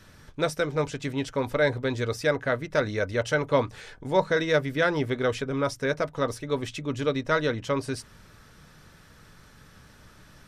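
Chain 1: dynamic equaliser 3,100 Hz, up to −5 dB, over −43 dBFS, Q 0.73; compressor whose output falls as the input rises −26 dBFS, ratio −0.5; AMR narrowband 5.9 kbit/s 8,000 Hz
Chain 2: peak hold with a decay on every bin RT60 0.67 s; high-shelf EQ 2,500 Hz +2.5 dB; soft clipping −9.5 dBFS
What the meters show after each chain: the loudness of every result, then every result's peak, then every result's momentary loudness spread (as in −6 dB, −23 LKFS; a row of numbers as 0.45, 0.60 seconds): −31.5, −25.0 LKFS; −15.0, −10.5 dBFS; 6, 6 LU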